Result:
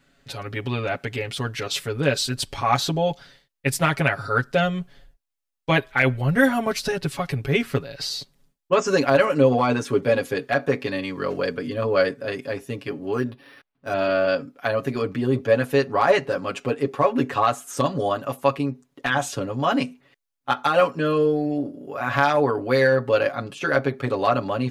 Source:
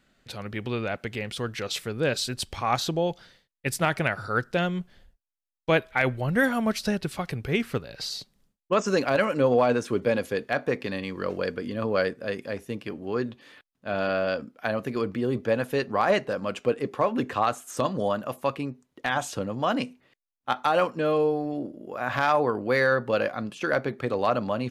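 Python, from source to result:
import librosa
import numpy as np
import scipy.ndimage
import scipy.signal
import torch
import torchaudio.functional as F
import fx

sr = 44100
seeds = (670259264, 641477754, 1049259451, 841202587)

y = x + 0.94 * np.pad(x, (int(7.2 * sr / 1000.0), 0))[:len(x)]
y = fx.resample_linear(y, sr, factor=6, at=(13.13, 13.94))
y = y * 10.0 ** (1.5 / 20.0)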